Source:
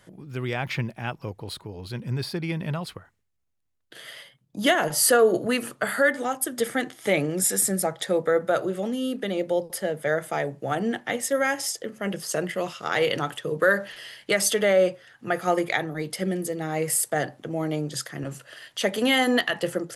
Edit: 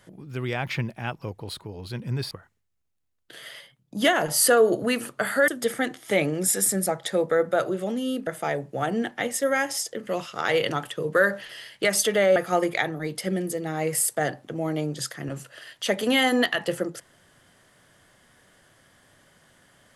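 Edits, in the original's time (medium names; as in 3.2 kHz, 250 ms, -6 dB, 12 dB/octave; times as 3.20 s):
2.31–2.93 s: delete
6.10–6.44 s: delete
9.23–10.16 s: delete
11.96–12.54 s: delete
14.83–15.31 s: delete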